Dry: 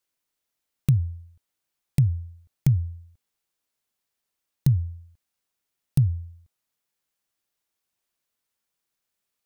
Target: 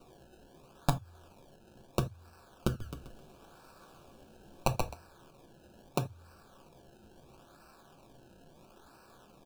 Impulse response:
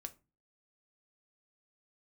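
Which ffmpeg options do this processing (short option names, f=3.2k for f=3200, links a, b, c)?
-filter_complex "[0:a]highpass=f=230:p=1,highshelf=f=12k:g=12,aecho=1:1:7.1:0.97,acompressor=threshold=-31dB:ratio=6,crystalizer=i=4:c=0,acrusher=samples=26:mix=1:aa=0.000001:lfo=1:lforange=26:lforate=0.75,asoftclip=type=hard:threshold=-9dB,asuperstop=centerf=2000:order=8:qfactor=3.2,asplit=3[a][b][c];[a]afade=t=out:st=2.8:d=0.02[d];[b]asplit=6[e][f][g][h][i][j];[f]adelay=131,afreqshift=-33,volume=-3dB[k];[g]adelay=262,afreqshift=-66,volume=-11.9dB[l];[h]adelay=393,afreqshift=-99,volume=-20.7dB[m];[i]adelay=524,afreqshift=-132,volume=-29.6dB[n];[j]adelay=655,afreqshift=-165,volume=-38.5dB[o];[e][k][l][m][n][o]amix=inputs=6:normalize=0,afade=t=in:st=2.8:d=0.02,afade=t=out:st=4.92:d=0.02[p];[c]afade=t=in:st=4.92:d=0.02[q];[d][p][q]amix=inputs=3:normalize=0[r];[1:a]atrim=start_sample=2205,atrim=end_sample=3969[s];[r][s]afir=irnorm=-1:irlink=0"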